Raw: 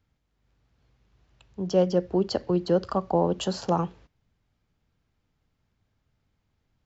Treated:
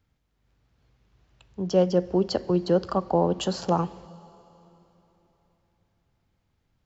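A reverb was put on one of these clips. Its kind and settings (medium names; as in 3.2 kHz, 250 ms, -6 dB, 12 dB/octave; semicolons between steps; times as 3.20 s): plate-style reverb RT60 3.6 s, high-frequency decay 0.9×, DRR 19 dB; trim +1 dB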